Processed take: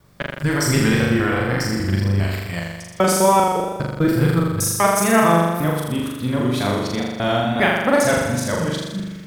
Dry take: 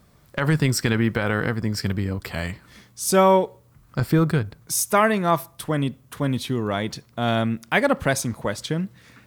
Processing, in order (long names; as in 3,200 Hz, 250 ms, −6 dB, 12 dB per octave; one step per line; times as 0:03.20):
reversed piece by piece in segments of 200 ms
flutter between parallel walls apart 7 metres, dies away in 1.2 s
tape wow and flutter 39 cents